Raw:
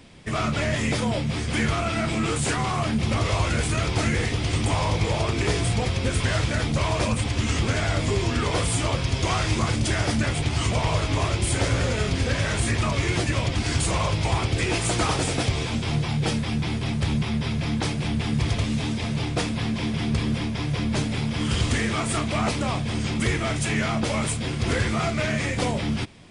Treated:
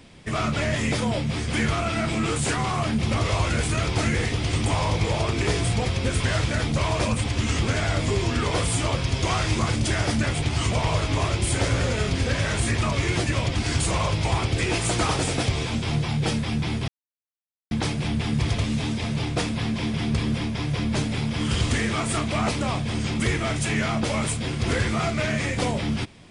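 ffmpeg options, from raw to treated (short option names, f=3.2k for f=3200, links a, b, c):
-filter_complex "[0:a]asplit=3[a][b][c];[a]atrim=end=16.88,asetpts=PTS-STARTPTS,afade=t=out:st=16.876:d=0.004:c=hsin[d];[b]atrim=start=16.88:end=17.71,asetpts=PTS-STARTPTS,volume=0[e];[c]atrim=start=17.71,asetpts=PTS-STARTPTS,afade=t=in:d=0.004:c=hsin[f];[d][e][f]concat=n=3:v=0:a=1"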